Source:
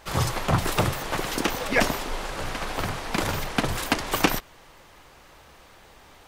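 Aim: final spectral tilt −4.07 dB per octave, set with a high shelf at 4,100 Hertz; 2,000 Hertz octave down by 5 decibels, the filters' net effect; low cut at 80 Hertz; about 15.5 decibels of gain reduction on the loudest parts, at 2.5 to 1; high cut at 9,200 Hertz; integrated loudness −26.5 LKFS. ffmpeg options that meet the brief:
ffmpeg -i in.wav -af "highpass=80,lowpass=9200,equalizer=frequency=2000:width_type=o:gain=-8.5,highshelf=frequency=4100:gain=8,acompressor=threshold=-42dB:ratio=2.5,volume=12.5dB" out.wav

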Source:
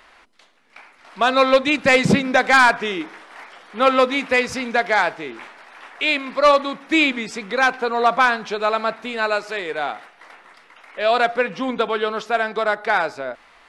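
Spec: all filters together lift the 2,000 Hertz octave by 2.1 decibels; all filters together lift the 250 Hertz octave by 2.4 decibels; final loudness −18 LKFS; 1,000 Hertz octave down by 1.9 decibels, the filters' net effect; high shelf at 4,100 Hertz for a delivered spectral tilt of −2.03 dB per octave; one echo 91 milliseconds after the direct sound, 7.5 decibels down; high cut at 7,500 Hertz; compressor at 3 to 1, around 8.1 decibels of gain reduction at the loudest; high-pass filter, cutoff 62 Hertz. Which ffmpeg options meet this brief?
ffmpeg -i in.wav -af "highpass=62,lowpass=7500,equalizer=frequency=250:width_type=o:gain=3,equalizer=frequency=1000:width_type=o:gain=-4,equalizer=frequency=2000:width_type=o:gain=5,highshelf=frequency=4100:gain=-3.5,acompressor=threshold=-19dB:ratio=3,aecho=1:1:91:0.422,volume=4.5dB" out.wav

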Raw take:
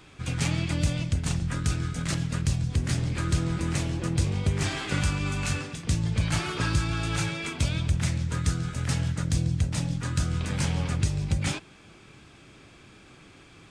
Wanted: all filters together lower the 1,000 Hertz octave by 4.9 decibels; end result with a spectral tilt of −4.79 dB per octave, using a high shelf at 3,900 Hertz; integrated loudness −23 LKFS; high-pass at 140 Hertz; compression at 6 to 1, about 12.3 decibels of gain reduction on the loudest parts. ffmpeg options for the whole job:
ffmpeg -i in.wav -af "highpass=140,equalizer=frequency=1000:width_type=o:gain=-6.5,highshelf=frequency=3900:gain=-3,acompressor=threshold=-39dB:ratio=6,volume=19dB" out.wav

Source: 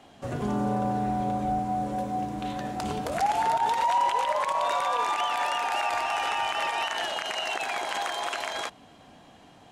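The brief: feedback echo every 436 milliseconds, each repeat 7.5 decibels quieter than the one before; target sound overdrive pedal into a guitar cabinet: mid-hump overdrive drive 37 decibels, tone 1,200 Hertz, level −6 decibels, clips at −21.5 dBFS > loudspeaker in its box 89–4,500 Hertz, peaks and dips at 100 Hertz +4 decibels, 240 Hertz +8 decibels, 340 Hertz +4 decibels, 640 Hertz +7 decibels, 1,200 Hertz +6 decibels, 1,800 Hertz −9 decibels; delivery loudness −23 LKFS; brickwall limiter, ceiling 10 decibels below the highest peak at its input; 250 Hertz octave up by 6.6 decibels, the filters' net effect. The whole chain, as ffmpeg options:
ffmpeg -i in.wav -filter_complex "[0:a]equalizer=frequency=250:width_type=o:gain=3,alimiter=level_in=1dB:limit=-24dB:level=0:latency=1,volume=-1dB,aecho=1:1:436|872|1308|1744|2180:0.422|0.177|0.0744|0.0312|0.0131,asplit=2[link_01][link_02];[link_02]highpass=frequency=720:poles=1,volume=37dB,asoftclip=type=tanh:threshold=-21.5dB[link_03];[link_01][link_03]amix=inputs=2:normalize=0,lowpass=frequency=1200:poles=1,volume=-6dB,highpass=89,equalizer=frequency=100:width_type=q:width=4:gain=4,equalizer=frequency=240:width_type=q:width=4:gain=8,equalizer=frequency=340:width_type=q:width=4:gain=4,equalizer=frequency=640:width_type=q:width=4:gain=7,equalizer=frequency=1200:width_type=q:width=4:gain=6,equalizer=frequency=1800:width_type=q:width=4:gain=-9,lowpass=frequency=4500:width=0.5412,lowpass=frequency=4500:width=1.3066,volume=3.5dB" out.wav

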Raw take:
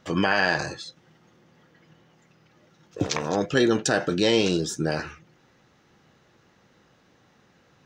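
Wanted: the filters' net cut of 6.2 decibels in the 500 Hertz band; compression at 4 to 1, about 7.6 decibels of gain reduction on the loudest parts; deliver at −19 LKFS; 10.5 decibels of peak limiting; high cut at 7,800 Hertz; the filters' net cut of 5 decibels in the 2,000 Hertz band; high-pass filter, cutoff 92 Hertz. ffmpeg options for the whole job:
ffmpeg -i in.wav -af "highpass=92,lowpass=7800,equalizer=frequency=500:width_type=o:gain=-8,equalizer=frequency=2000:width_type=o:gain=-6,acompressor=threshold=-29dB:ratio=4,volume=17.5dB,alimiter=limit=-7.5dB:level=0:latency=1" out.wav

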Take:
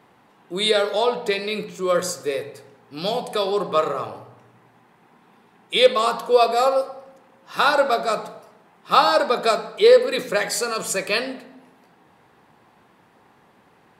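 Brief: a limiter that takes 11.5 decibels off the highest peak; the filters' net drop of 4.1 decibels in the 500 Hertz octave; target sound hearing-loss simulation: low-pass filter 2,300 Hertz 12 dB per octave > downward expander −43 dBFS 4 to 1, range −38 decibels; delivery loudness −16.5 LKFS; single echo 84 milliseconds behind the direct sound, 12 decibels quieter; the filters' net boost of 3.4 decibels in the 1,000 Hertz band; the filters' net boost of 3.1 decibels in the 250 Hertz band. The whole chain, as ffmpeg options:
ffmpeg -i in.wav -af "equalizer=frequency=250:width_type=o:gain=6.5,equalizer=frequency=500:width_type=o:gain=-8,equalizer=frequency=1000:width_type=o:gain=7,alimiter=limit=-12.5dB:level=0:latency=1,lowpass=2300,aecho=1:1:84:0.251,agate=range=-38dB:threshold=-43dB:ratio=4,volume=8.5dB" out.wav

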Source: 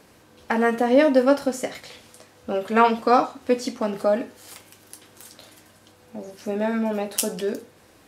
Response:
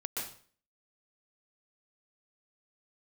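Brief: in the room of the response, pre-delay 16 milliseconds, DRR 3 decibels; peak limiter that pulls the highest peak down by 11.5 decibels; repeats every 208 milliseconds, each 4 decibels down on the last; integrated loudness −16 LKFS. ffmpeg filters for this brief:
-filter_complex "[0:a]alimiter=limit=-13dB:level=0:latency=1,aecho=1:1:208|416|624|832|1040|1248|1456|1664|1872:0.631|0.398|0.25|0.158|0.0994|0.0626|0.0394|0.0249|0.0157,asplit=2[link_01][link_02];[1:a]atrim=start_sample=2205,adelay=16[link_03];[link_02][link_03]afir=irnorm=-1:irlink=0,volume=-5.5dB[link_04];[link_01][link_04]amix=inputs=2:normalize=0,volume=6dB"

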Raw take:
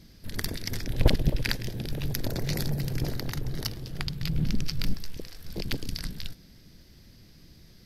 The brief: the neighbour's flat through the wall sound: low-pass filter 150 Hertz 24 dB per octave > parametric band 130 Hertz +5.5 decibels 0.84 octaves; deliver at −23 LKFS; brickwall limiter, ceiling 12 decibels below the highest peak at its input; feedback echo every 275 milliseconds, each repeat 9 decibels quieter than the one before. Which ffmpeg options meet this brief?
ffmpeg -i in.wav -af "alimiter=limit=-18dB:level=0:latency=1,lowpass=frequency=150:width=0.5412,lowpass=frequency=150:width=1.3066,equalizer=frequency=130:width_type=o:width=0.84:gain=5.5,aecho=1:1:275|550|825|1100:0.355|0.124|0.0435|0.0152,volume=10dB" out.wav

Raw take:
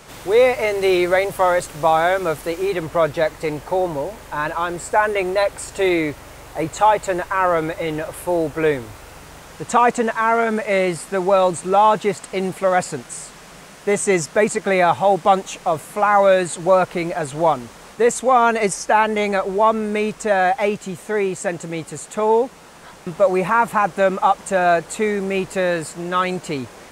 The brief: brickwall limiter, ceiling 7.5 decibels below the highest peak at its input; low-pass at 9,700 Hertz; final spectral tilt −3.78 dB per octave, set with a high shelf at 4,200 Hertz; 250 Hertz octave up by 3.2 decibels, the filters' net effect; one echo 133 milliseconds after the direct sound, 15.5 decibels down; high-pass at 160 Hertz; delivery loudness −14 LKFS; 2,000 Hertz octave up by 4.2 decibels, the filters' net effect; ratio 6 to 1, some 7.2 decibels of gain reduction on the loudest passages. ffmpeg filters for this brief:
ffmpeg -i in.wav -af "highpass=160,lowpass=9700,equalizer=frequency=250:width_type=o:gain=6,equalizer=frequency=2000:width_type=o:gain=4,highshelf=frequency=4200:gain=6.5,acompressor=threshold=-16dB:ratio=6,alimiter=limit=-13dB:level=0:latency=1,aecho=1:1:133:0.168,volume=9.5dB" out.wav

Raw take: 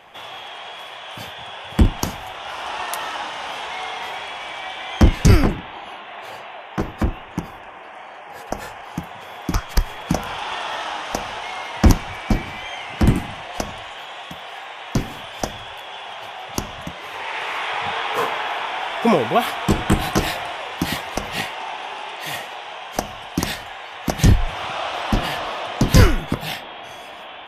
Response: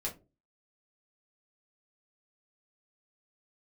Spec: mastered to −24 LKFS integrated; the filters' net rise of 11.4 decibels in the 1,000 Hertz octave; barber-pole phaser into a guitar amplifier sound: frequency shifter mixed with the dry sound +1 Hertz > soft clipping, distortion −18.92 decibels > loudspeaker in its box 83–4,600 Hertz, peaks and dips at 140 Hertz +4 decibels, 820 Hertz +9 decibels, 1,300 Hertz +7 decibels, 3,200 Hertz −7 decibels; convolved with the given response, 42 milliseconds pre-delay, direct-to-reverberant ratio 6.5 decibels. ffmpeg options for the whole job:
-filter_complex "[0:a]equalizer=frequency=1000:width_type=o:gain=6.5,asplit=2[link_01][link_02];[1:a]atrim=start_sample=2205,adelay=42[link_03];[link_02][link_03]afir=irnorm=-1:irlink=0,volume=-8.5dB[link_04];[link_01][link_04]amix=inputs=2:normalize=0,asplit=2[link_05][link_06];[link_06]afreqshift=1[link_07];[link_05][link_07]amix=inputs=2:normalize=1,asoftclip=threshold=-6dB,highpass=83,equalizer=frequency=140:width_type=q:width=4:gain=4,equalizer=frequency=820:width_type=q:width=4:gain=9,equalizer=frequency=1300:width_type=q:width=4:gain=7,equalizer=frequency=3200:width_type=q:width=4:gain=-7,lowpass=frequency=4600:width=0.5412,lowpass=frequency=4600:width=1.3066,volume=-2dB"

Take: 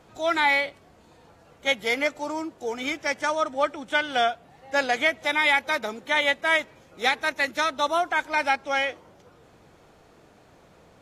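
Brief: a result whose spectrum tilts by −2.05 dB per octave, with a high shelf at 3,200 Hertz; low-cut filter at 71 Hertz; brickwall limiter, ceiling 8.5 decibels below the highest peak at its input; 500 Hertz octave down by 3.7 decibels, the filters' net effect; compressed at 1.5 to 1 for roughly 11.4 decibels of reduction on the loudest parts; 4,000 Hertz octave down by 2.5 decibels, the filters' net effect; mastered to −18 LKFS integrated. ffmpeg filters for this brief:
ffmpeg -i in.wav -af "highpass=71,equalizer=frequency=500:width_type=o:gain=-5,highshelf=frequency=3200:gain=7,equalizer=frequency=4000:width_type=o:gain=-8,acompressor=threshold=-51dB:ratio=1.5,volume=20.5dB,alimiter=limit=-7.5dB:level=0:latency=1" out.wav

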